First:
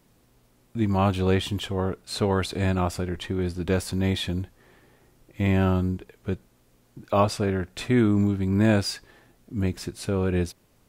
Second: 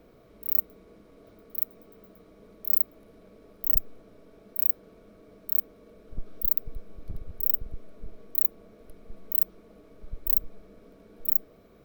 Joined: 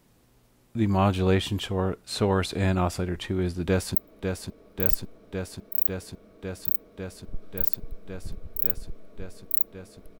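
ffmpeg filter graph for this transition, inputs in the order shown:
-filter_complex "[0:a]apad=whole_dur=10.19,atrim=end=10.19,atrim=end=3.952[a];[1:a]atrim=start=2.788:end=9.03[b];[a][b]acrossfade=d=0.004:c1=hsin:c2=hsin,asplit=2[c][d];[d]afade=t=in:st=3.67:d=0.01,afade=t=out:st=3.95:d=0.01,aecho=0:1:550|1100|1650|2200|2750|3300|3850|4400|4950|5500|6050|6600:0.530884|0.451252|0.383564|0.326029|0.277125|0.235556|0.200223|0.170189|0.144661|0.122962|0.104518|0.0888399[e];[c][e]amix=inputs=2:normalize=0"

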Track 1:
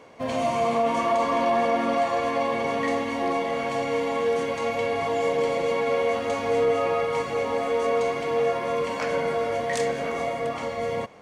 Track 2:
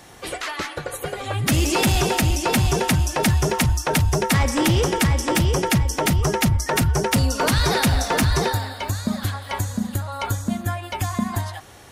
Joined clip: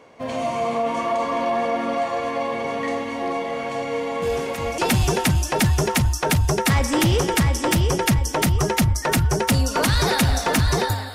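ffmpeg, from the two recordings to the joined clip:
-filter_complex "[1:a]asplit=2[a][b];[0:a]apad=whole_dur=11.14,atrim=end=11.14,atrim=end=4.782[c];[b]atrim=start=2.418:end=8.78[d];[a]atrim=start=1.86:end=2.42,asetpts=PTS-STARTPTS,volume=-14.5dB,afade=t=in:d=0.004:c=hsin,afade=t=out:st=0.556:d=0.004:c=hsin,adelay=4220[e];[c][d]acrossfade=d=0.004:c1=hsin:c2=hsin[f];[f][e]amix=inputs=2:normalize=0"

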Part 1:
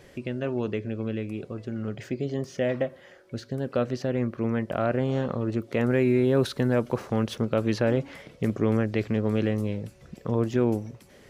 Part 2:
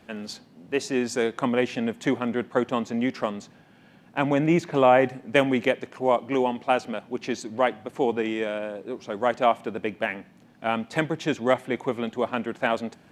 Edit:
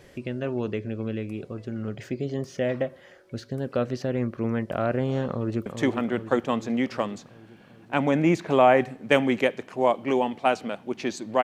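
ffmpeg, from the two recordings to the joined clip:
-filter_complex "[0:a]apad=whole_dur=11.43,atrim=end=11.43,atrim=end=5.662[a];[1:a]atrim=start=1.898:end=7.67[b];[a][b]acrossfade=d=0.004:c1=hsin:c2=hsin,asplit=2[c][d];[d]afade=t=in:st=5.3:d=0.01,afade=t=out:st=5.66:d=0.01,aecho=0:1:390|780|1170|1560|1950|2340|2730|3120|3510:0.446684|0.290344|0.188724|0.12267|0.0797358|0.0518283|0.0336884|0.0218974|0.0142333[e];[c][e]amix=inputs=2:normalize=0"

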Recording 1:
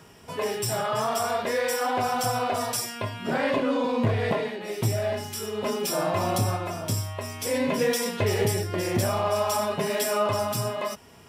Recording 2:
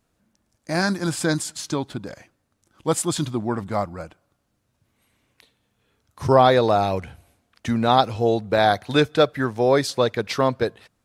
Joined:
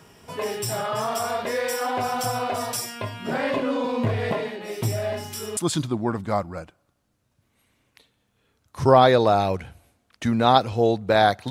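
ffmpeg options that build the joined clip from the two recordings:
-filter_complex "[0:a]apad=whole_dur=11.5,atrim=end=11.5,atrim=end=5.572[a];[1:a]atrim=start=2.998:end=8.93[b];[a][b]acrossfade=d=0.004:c1=hsin:c2=hsin"

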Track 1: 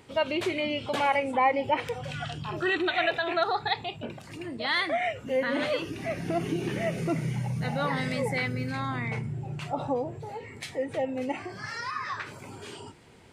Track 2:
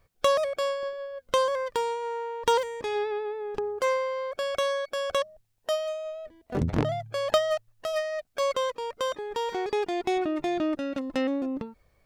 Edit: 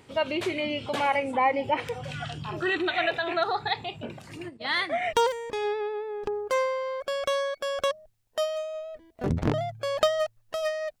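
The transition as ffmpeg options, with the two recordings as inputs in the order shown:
-filter_complex "[0:a]asplit=3[a][b][c];[a]afade=t=out:st=4.48:d=0.02[d];[b]agate=range=-33dB:threshold=-29dB:ratio=3:release=100:detection=peak,afade=t=in:st=4.48:d=0.02,afade=t=out:st=5.13:d=0.02[e];[c]afade=t=in:st=5.13:d=0.02[f];[d][e][f]amix=inputs=3:normalize=0,apad=whole_dur=11,atrim=end=11,atrim=end=5.132[g];[1:a]atrim=start=2.438:end=8.31[h];[g][h]acrossfade=d=0.004:c1=hsin:c2=hsin"

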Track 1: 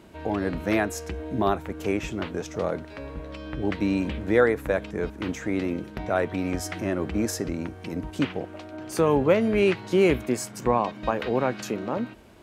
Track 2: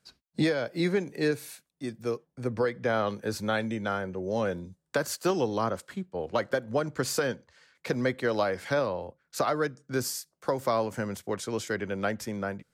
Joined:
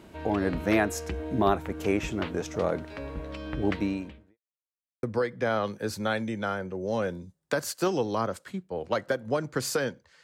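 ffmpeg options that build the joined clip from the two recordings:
-filter_complex "[0:a]apad=whole_dur=10.23,atrim=end=10.23,asplit=2[a][b];[a]atrim=end=4.38,asetpts=PTS-STARTPTS,afade=t=out:st=3.73:d=0.65:c=qua[c];[b]atrim=start=4.38:end=5.03,asetpts=PTS-STARTPTS,volume=0[d];[1:a]atrim=start=2.46:end=7.66,asetpts=PTS-STARTPTS,afade=t=in:d=0.004:c=hsin[e];[c][d][e]concat=n=3:v=0:a=1"

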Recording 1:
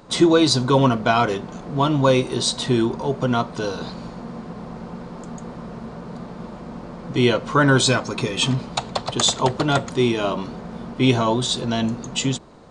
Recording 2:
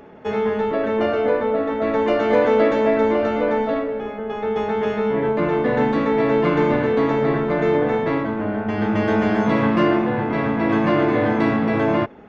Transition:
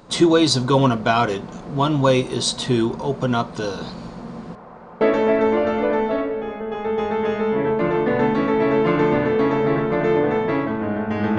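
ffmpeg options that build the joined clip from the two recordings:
-filter_complex "[0:a]asettb=1/sr,asplit=3[a][b][c];[a]atrim=end=4.554[d];[b]atrim=start=4.55:end=5.01,asetpts=PTS-STARTPTS,afade=t=in:d=0.004:c=qsin,afade=t=out:st=0.456:d=0.004:c=qsin,acrossover=split=470 2100:gain=0.224 1 0.141[e][f][g];[e][f][g]amix=inputs=3:normalize=0[h];[c]atrim=start=5.006[i];[d][h]acrossfade=d=0.004:c1=hsin:c2=qsin[j];[j][i]acrossfade=d=0.004:c1=qsin:c2=hsin,apad=whole_dur=11.38,atrim=end=11.38,atrim=end=5.012[k];[1:a]atrim=start=2.588:end=8.96[l];[k][l]acrossfade=d=0.004:c1=hsin:c2=hsin"

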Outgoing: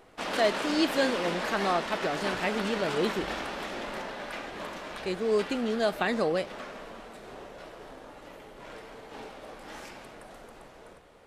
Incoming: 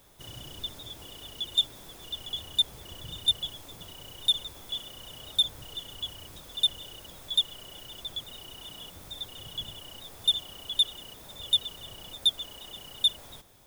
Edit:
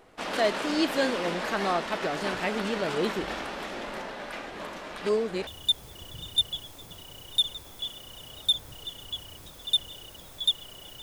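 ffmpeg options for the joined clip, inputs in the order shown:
-filter_complex "[0:a]apad=whole_dur=11.02,atrim=end=11.02,asplit=2[a][b];[a]atrim=end=5.012[c];[b]atrim=start=5.008:end=5.472,asetpts=PTS-STARTPTS,areverse[d];[1:a]atrim=start=2.368:end=7.92[e];[c][d]acrossfade=d=0.004:c1=hsin:c2=hsin[f];[f][e]acrossfade=d=0.004:c1=hsin:c2=hsin"

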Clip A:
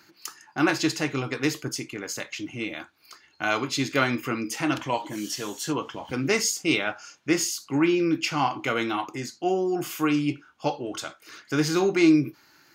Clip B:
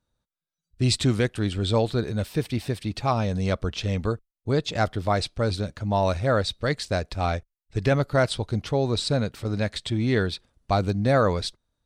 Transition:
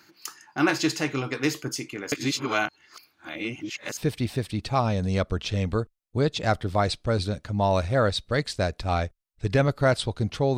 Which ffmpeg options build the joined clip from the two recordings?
-filter_complex "[0:a]apad=whole_dur=10.57,atrim=end=10.57,asplit=2[a][b];[a]atrim=end=2.122[c];[b]atrim=start=2.118:end=3.972,asetpts=PTS-STARTPTS,areverse[d];[1:a]atrim=start=2.288:end=8.89[e];[c][d]acrossfade=d=0.004:c1=hsin:c2=hsin[f];[f][e]acrossfade=d=0.004:c1=hsin:c2=hsin"

